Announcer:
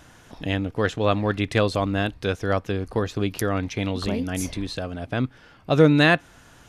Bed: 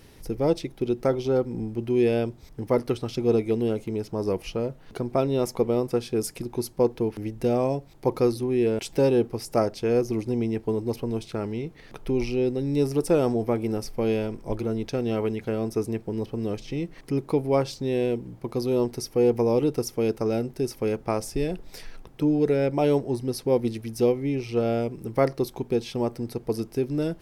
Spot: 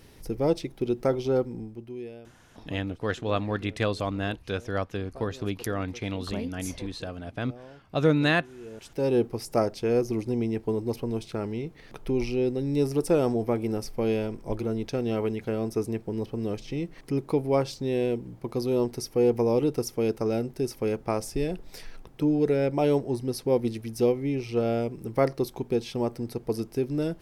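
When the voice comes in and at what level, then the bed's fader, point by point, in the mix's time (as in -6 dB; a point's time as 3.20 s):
2.25 s, -6.0 dB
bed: 1.41 s -1.5 dB
2.25 s -23 dB
8.57 s -23 dB
9.15 s -1.5 dB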